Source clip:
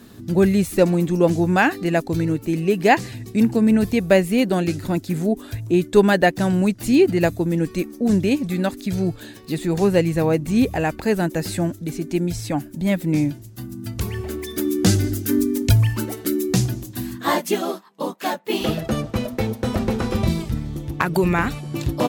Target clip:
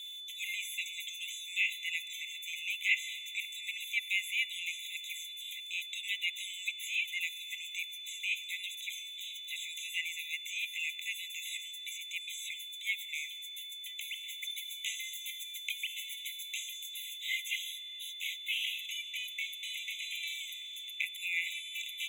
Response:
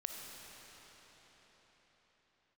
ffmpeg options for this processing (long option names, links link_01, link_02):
-filter_complex "[0:a]acrossover=split=2600[link_01][link_02];[link_02]acompressor=threshold=-40dB:ratio=4:attack=1:release=60[link_03];[link_01][link_03]amix=inputs=2:normalize=0,aeval=exprs='val(0)+0.00631*sin(2*PI*3500*n/s)':channel_layout=same,asplit=2[link_04][link_05];[1:a]atrim=start_sample=2205[link_06];[link_05][link_06]afir=irnorm=-1:irlink=0,volume=-9.5dB[link_07];[link_04][link_07]amix=inputs=2:normalize=0,afftfilt=real='re*eq(mod(floor(b*sr/1024/2000),2),1)':imag='im*eq(mod(floor(b*sr/1024/2000),2),1)':win_size=1024:overlap=0.75"